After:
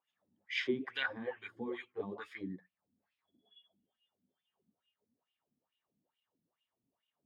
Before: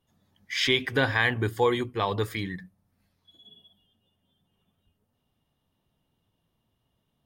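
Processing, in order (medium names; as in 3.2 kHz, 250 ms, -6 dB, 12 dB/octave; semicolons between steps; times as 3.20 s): wah-wah 2.3 Hz 220–2900 Hz, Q 4.3; 1.03–2.41 s: three-phase chorus; trim +1 dB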